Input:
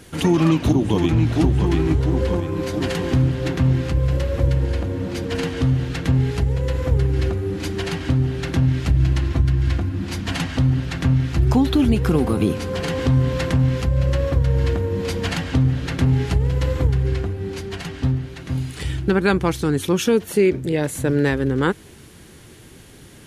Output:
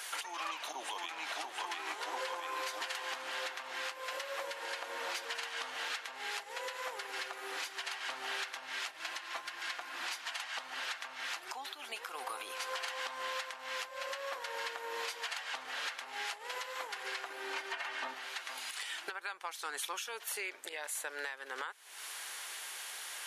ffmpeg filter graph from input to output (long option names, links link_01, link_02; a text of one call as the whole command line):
ffmpeg -i in.wav -filter_complex "[0:a]asettb=1/sr,asplit=3[link_01][link_02][link_03];[link_01]atrim=end=17.304[link_04];[link_02]atrim=start=17.3:end=18.14,asetpts=PTS-STARTPTS,afade=type=in:duration=0.004:curve=qsin,afade=type=out:start_time=0.836:duration=0.004:curve=qsin,aecho=1:1:3.3:0.49,atrim=end_sample=37044,acrossover=split=2800[link_05][link_06];[link_06]acompressor=threshold=-51dB:ratio=4:attack=1:release=60[link_07];[link_05][link_07]amix=inputs=2:normalize=0,equalizer=frequency=310:width_type=o:width=1.9:gain=5[link_08];[link_03]atrim=start=18.136[link_09];[link_04][link_08]acrossfade=duration=0.004:curve1=hsin:curve2=qsin[link_10];[link_10][link_09]acrossfade=duration=0.004:curve1=qsin:curve2=hsin,highpass=frequency=800:width=0.5412,highpass=frequency=800:width=1.3066,acompressor=threshold=-39dB:ratio=6,alimiter=level_in=9.5dB:limit=-24dB:level=0:latency=1:release=441,volume=-9.5dB,volume=6dB" out.wav